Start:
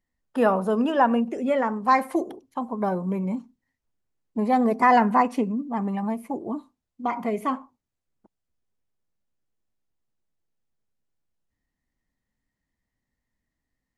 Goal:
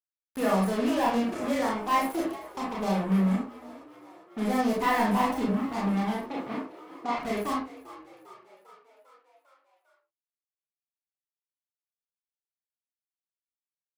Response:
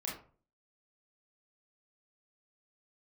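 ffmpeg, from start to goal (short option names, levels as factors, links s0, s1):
-filter_complex "[0:a]aemphasis=mode=production:type=50fm,aeval=exprs='sgn(val(0))*max(abs(val(0))-0.00794,0)':c=same,acrusher=bits=4:mix=0:aa=0.5,asoftclip=type=tanh:threshold=0.112,asettb=1/sr,asplit=3[s0][s1][s2];[s0]atrim=end=6.224[s3];[s1]atrim=start=6.22:end=7.16,asetpts=PTS-STARTPTS,afade=t=in:d=0.004:c=qsin,afade=t=out:st=0.936:d=0.004:c=qsin,highpass=130,lowpass=4500[s4];[s2]atrim=start=7.156[s5];[s3][s4]acrossfade=d=0.004:c1=hsin:c2=qsin[s6];[s6][s5]acrossfade=d=0.004:c1=qsin:c2=hsin,asplit=7[s7][s8][s9][s10][s11][s12][s13];[s8]adelay=399,afreqshift=55,volume=0.133[s14];[s9]adelay=798,afreqshift=110,volume=0.0841[s15];[s10]adelay=1197,afreqshift=165,volume=0.0531[s16];[s11]adelay=1596,afreqshift=220,volume=0.0335[s17];[s12]adelay=1995,afreqshift=275,volume=0.0209[s18];[s13]adelay=2394,afreqshift=330,volume=0.0132[s19];[s7][s14][s15][s16][s17][s18][s19]amix=inputs=7:normalize=0[s20];[1:a]atrim=start_sample=2205,afade=t=out:st=0.21:d=0.01,atrim=end_sample=9702[s21];[s20][s21]afir=irnorm=-1:irlink=0,volume=0.794"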